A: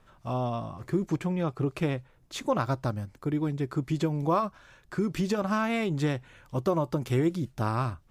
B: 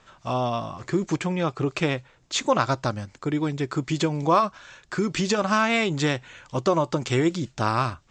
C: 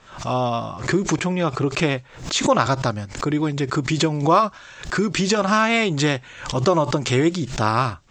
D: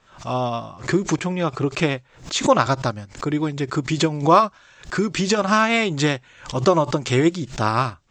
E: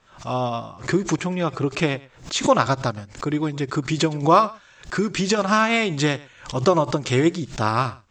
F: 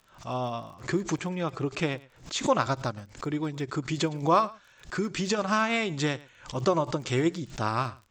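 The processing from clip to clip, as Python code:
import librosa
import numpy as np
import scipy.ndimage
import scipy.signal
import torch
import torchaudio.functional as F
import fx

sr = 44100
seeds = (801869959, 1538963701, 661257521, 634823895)

y1 = scipy.signal.sosfilt(scipy.signal.ellip(4, 1.0, 50, 7400.0, 'lowpass', fs=sr, output='sos'), x)
y1 = fx.tilt_eq(y1, sr, slope=2.0)
y1 = y1 * librosa.db_to_amplitude(8.0)
y2 = fx.pre_swell(y1, sr, db_per_s=110.0)
y2 = y2 * librosa.db_to_amplitude(3.5)
y3 = fx.upward_expand(y2, sr, threshold_db=-34.0, expansion=1.5)
y3 = y3 * librosa.db_to_amplitude(2.5)
y4 = y3 + 10.0 ** (-21.5 / 20.0) * np.pad(y3, (int(111 * sr / 1000.0), 0))[:len(y3)]
y4 = y4 * librosa.db_to_amplitude(-1.0)
y5 = fx.dmg_crackle(y4, sr, seeds[0], per_s=26.0, level_db=-35.0)
y5 = y5 * librosa.db_to_amplitude(-7.0)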